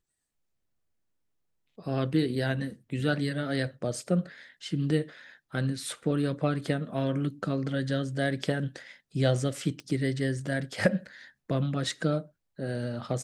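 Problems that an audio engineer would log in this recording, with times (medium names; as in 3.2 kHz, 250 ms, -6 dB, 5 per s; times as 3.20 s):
9.80 s: pop -29 dBFS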